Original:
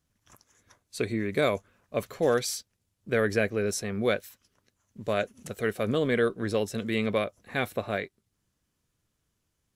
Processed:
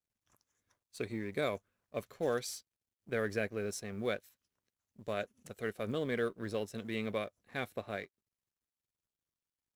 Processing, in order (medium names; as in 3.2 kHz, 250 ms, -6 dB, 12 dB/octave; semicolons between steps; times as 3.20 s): companding laws mixed up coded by A; trim -8.5 dB